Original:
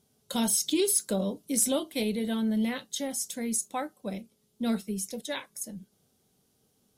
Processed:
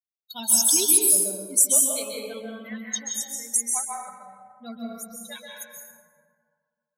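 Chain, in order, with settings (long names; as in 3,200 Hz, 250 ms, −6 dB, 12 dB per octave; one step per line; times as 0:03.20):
spectral dynamics exaggerated over time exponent 3
bass and treble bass −14 dB, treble +15 dB
dense smooth reverb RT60 1.9 s, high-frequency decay 0.4×, pre-delay 120 ms, DRR −2.5 dB
boost into a limiter +5.5 dB
level −5.5 dB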